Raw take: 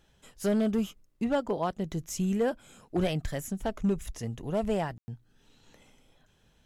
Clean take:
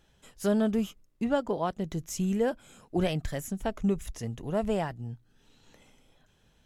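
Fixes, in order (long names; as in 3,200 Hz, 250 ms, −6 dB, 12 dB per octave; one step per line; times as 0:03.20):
clipped peaks rebuilt −20.5 dBFS
ambience match 0:04.98–0:05.08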